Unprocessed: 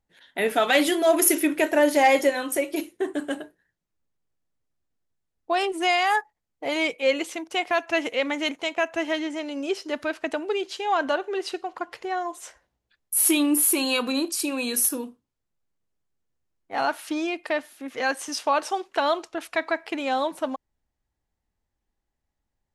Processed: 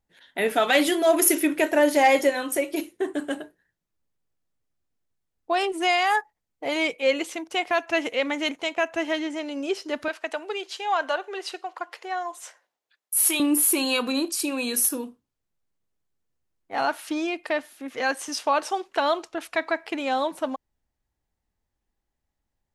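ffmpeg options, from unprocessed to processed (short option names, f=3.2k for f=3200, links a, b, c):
-filter_complex "[0:a]asettb=1/sr,asplit=3[a][b][c];[a]atrim=end=10.084[d];[b]atrim=start=10.08:end=13.4,asetpts=PTS-STARTPTS,afade=t=in:d=0.004:c=qsin,afade=t=out:st=3.316:d=0.004:c=qsin,highpass=540[e];[c]atrim=start=13.396[f];[d][e]acrossfade=d=0.004:c1=hsin:c2=qsin[g];[g][f]acrossfade=d=0.004:c1=qsin:c2=hsin"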